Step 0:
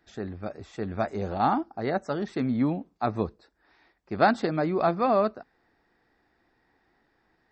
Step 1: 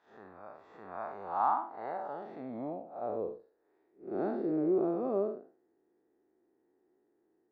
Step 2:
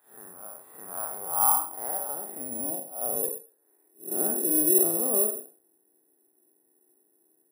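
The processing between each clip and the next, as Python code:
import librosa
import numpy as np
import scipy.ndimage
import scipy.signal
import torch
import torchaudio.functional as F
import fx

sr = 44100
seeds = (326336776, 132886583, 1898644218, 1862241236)

y1 = fx.spec_blur(x, sr, span_ms=160.0)
y1 = fx.filter_sweep_bandpass(y1, sr, from_hz=1000.0, to_hz=370.0, start_s=1.67, end_s=4.0, q=3.8)
y1 = y1 * librosa.db_to_amplitude(5.0)
y2 = fx.doubler(y1, sr, ms=48.0, db=-8)
y2 = (np.kron(scipy.signal.resample_poly(y2, 1, 4), np.eye(4)[0]) * 4)[:len(y2)]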